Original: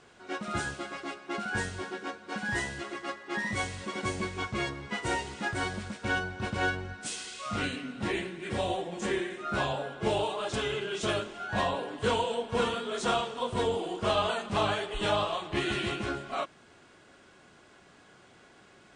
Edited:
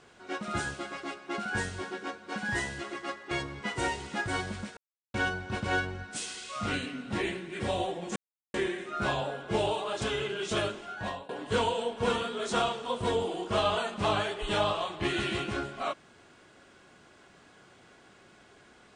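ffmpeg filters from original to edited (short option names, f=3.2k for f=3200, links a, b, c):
-filter_complex "[0:a]asplit=5[a][b][c][d][e];[a]atrim=end=3.312[f];[b]atrim=start=4.578:end=6.04,asetpts=PTS-STARTPTS,afade=t=out:st=1.458:d=0.004:c=hsin,apad=pad_dur=0.37[g];[c]atrim=start=6.04:end=9.06,asetpts=PTS-STARTPTS,afade=t=in:d=0.004:c=hsin,afade=t=out:st=3.016:d=0.004:c=hsin,apad=pad_dur=0.38[h];[d]atrim=start=9.06:end=11.81,asetpts=PTS-STARTPTS,afade=t=in:d=0.004:c=hsin,afade=t=out:st=2.24:d=0.51:silence=0.0891251[i];[e]atrim=start=11.81,asetpts=PTS-STARTPTS,afade=t=in:d=0.004:c=hsin:silence=0.0891251[j];[g][h][i][j]concat=n=4:v=0:a=1[k];[f][k]acrossfade=d=0.004:c1=hsin:c2=hsin"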